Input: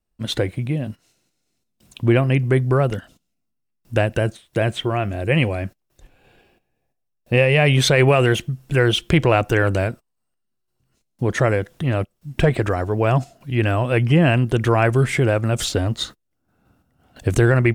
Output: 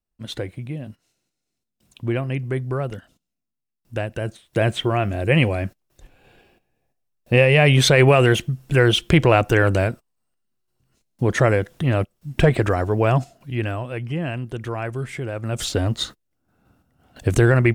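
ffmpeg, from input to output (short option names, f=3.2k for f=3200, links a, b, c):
-af "volume=12dB,afade=t=in:st=4.19:d=0.47:silence=0.375837,afade=t=out:st=12.92:d=1.01:silence=0.251189,afade=t=in:st=15.32:d=0.53:silence=0.281838"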